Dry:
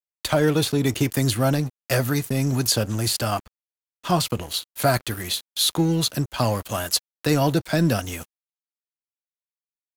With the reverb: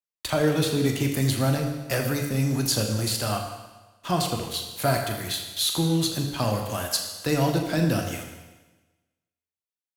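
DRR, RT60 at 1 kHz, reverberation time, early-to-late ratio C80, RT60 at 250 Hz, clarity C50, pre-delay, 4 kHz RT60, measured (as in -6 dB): 2.5 dB, 1.2 s, 1.2 s, 6.5 dB, 1.2 s, 5.5 dB, 21 ms, 1.2 s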